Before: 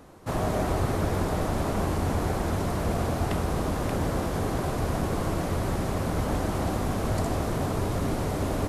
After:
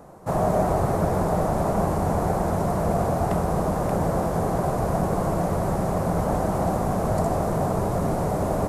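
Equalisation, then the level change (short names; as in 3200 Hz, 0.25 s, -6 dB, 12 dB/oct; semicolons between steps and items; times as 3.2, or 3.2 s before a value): EQ curve 100 Hz 0 dB, 180 Hz +8 dB, 260 Hz -1 dB, 690 Hz +9 dB, 3200 Hz -8 dB, 7800 Hz +1 dB; 0.0 dB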